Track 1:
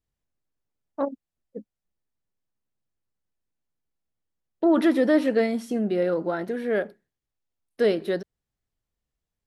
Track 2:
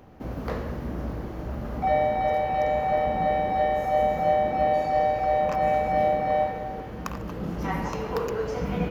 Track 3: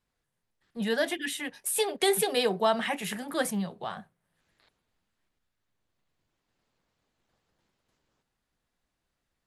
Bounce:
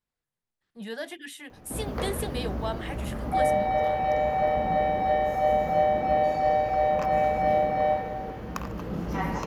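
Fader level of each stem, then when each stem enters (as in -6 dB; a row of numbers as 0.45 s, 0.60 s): mute, -0.5 dB, -8.0 dB; mute, 1.50 s, 0.00 s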